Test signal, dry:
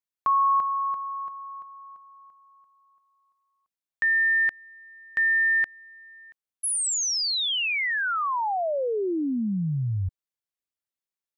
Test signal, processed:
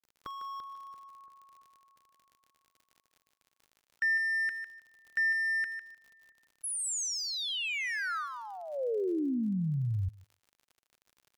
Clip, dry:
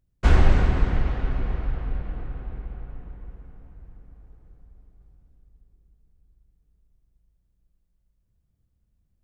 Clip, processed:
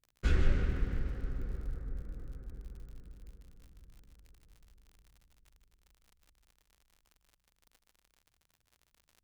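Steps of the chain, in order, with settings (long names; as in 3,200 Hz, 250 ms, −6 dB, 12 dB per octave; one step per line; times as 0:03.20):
adaptive Wiener filter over 15 samples
noise reduction from a noise print of the clip's start 7 dB
flat-topped bell 820 Hz −11.5 dB 1 octave
surface crackle 47 per second −43 dBFS
feedback echo with a high-pass in the loop 152 ms, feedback 19%, high-pass 480 Hz, level −9 dB
level −4.5 dB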